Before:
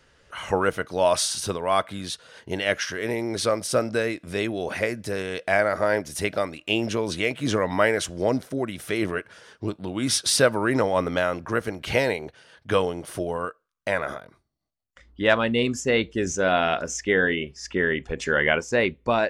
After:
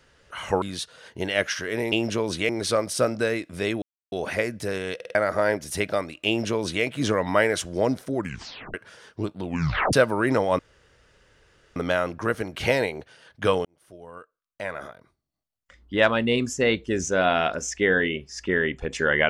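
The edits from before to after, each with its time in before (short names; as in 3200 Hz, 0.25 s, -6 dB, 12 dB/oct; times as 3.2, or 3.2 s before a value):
0.62–1.93 cut
4.56 insert silence 0.30 s
5.39 stutter in place 0.05 s, 4 plays
6.71–7.28 copy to 3.23
8.6 tape stop 0.58 s
9.89 tape stop 0.48 s
11.03 insert room tone 1.17 s
12.92–15.23 fade in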